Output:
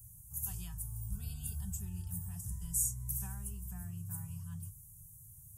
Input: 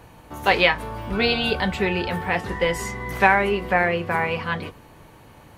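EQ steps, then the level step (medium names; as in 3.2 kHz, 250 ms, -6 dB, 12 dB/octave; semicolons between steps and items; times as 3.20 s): inverse Chebyshev band-stop 250–4400 Hz, stop band 40 dB; tilt EQ +2 dB/octave; +2.0 dB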